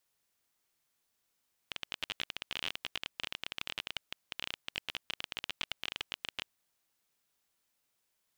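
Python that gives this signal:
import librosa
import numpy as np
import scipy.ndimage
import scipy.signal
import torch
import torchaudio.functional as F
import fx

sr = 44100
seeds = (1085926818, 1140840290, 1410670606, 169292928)

y = fx.geiger_clicks(sr, seeds[0], length_s=4.73, per_s=23.0, level_db=-18.5)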